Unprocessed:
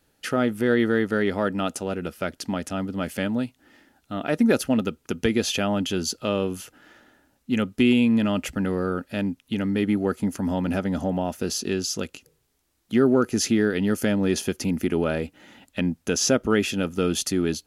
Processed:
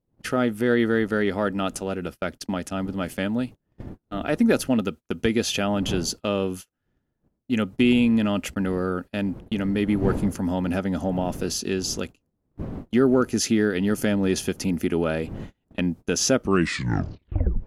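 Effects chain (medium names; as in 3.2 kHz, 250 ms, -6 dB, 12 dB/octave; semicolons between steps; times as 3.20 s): tape stop on the ending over 1.28 s; wind noise 240 Hz -39 dBFS; gate -34 dBFS, range -32 dB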